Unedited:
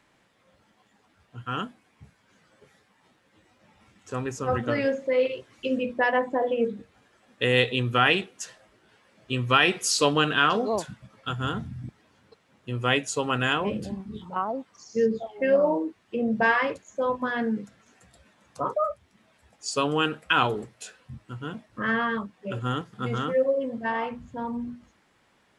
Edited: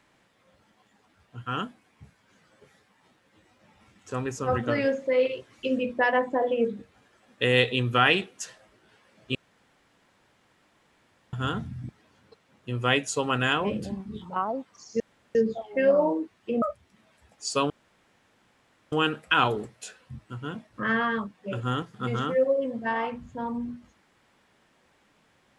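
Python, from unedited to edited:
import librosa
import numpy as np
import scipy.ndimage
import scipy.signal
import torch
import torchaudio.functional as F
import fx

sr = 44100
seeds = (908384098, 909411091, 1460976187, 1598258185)

y = fx.edit(x, sr, fx.room_tone_fill(start_s=9.35, length_s=1.98),
    fx.insert_room_tone(at_s=15.0, length_s=0.35),
    fx.cut(start_s=16.27, length_s=2.56),
    fx.insert_room_tone(at_s=19.91, length_s=1.22), tone=tone)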